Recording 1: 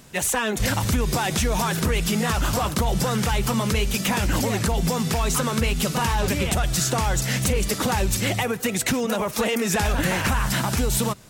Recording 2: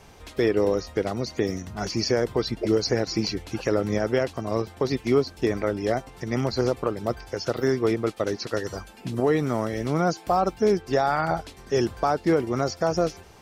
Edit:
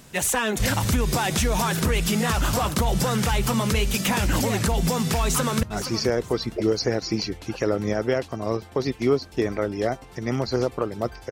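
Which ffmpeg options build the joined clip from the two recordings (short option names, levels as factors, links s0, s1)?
-filter_complex "[0:a]apad=whole_dur=11.31,atrim=end=11.31,atrim=end=5.632[s0];[1:a]atrim=start=1.678:end=7.36[s1];[s0][s1]acrossfade=d=0.004:c1=hsin:c2=hsin,asplit=2[s2][s3];[s3]afade=t=in:st=5.23:d=0.01,afade=t=out:st=5.63:d=0.01,aecho=0:1:470|940|1410:0.251189|0.0753566|0.022607[s4];[s2][s4]amix=inputs=2:normalize=0"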